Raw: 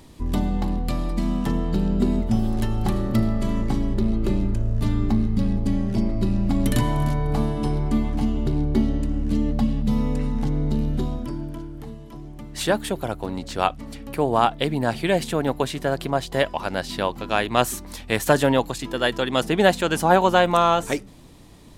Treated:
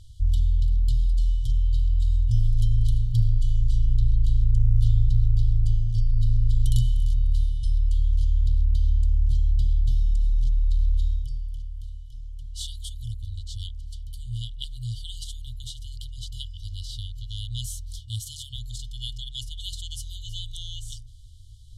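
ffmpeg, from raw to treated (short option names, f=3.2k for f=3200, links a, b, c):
-filter_complex "[0:a]asettb=1/sr,asplit=3[a][b][c];[a]atrim=end=17.994[d];[b]atrim=start=17.99:end=18.54,asetpts=PTS-STARTPTS,afade=t=in:d=0.004:c=qsin,afade=t=out:st=0.546:d=0.004:c=qsin,highpass=84[e];[c]atrim=start=18.536[f];[d][e]acrossfade=d=0.004:c1=hsin:c2=qsin[g];[g][f]acrossfade=d=0.004:c1=qsin:c2=hsin,lowpass=10k,afftfilt=real='re*(1-between(b*sr/4096,120,2900))':imag='im*(1-between(b*sr/4096,120,2900))':win_size=4096:overlap=0.75,lowshelf=f=180:g=11.5,volume=-5dB"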